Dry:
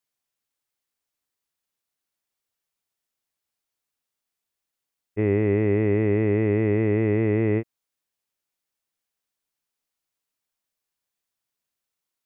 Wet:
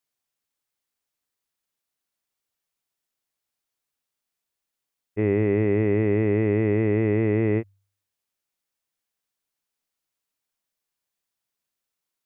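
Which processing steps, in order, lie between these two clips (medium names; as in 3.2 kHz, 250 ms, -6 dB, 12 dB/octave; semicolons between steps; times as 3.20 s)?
de-hum 49.13 Hz, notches 2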